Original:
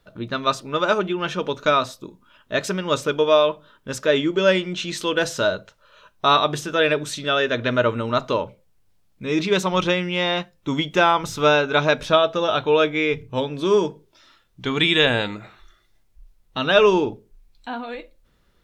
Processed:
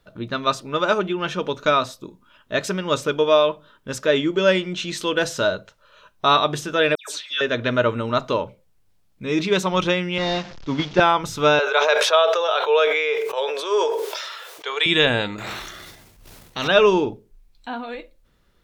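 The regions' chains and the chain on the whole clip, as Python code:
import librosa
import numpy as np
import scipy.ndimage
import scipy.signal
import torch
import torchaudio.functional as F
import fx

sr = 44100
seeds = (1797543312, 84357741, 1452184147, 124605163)

y = fx.chain(x, sr, fx.highpass(hz=1100.0, slope=12),
    fx.dispersion(late='lows', ms=133.0, hz=2400.0), at=(6.95, 7.41))
y = fx.chain(y, sr, fx.delta_mod(bps=32000, step_db=-30.0),
    fx.band_widen(depth_pct=70), at=(10.18, 11.0))
y = fx.chain(y, sr, fx.ellip_highpass(hz=440.0, order=4, stop_db=50),
    fx.sustainer(db_per_s=32.0), at=(11.59, 14.86))
y = fx.chain(y, sr, fx.highpass(hz=69.0, slope=12),
    fx.transient(attack_db=-7, sustain_db=11),
    fx.spectral_comp(ratio=2.0), at=(15.38, 16.68))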